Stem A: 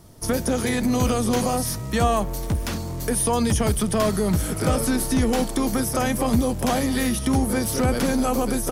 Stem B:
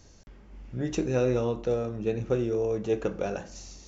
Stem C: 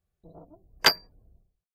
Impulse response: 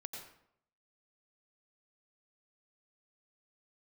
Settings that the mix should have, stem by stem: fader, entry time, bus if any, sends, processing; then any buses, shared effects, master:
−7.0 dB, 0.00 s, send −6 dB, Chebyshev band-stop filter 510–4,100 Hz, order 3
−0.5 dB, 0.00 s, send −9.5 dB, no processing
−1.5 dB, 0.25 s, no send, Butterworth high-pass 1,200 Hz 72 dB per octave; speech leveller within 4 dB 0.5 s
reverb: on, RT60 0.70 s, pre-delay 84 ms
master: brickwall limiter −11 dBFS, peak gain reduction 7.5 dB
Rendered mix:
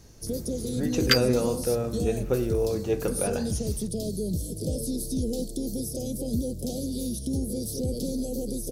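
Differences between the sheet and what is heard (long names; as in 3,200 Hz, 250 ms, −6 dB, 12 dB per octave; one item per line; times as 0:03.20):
stem A: send off
master: missing brickwall limiter −11 dBFS, peak gain reduction 7.5 dB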